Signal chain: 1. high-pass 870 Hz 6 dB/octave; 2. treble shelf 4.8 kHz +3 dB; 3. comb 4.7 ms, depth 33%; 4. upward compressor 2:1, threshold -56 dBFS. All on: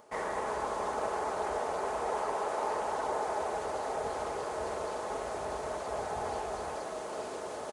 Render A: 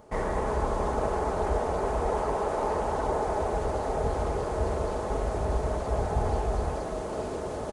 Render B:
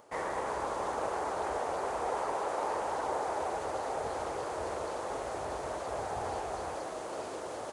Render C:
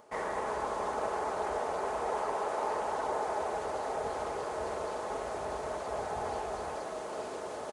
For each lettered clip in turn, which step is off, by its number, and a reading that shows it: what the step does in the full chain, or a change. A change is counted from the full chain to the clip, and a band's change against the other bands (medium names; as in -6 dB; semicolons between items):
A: 1, 125 Hz band +17.5 dB; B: 3, 125 Hz band +2.0 dB; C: 2, 8 kHz band -2.0 dB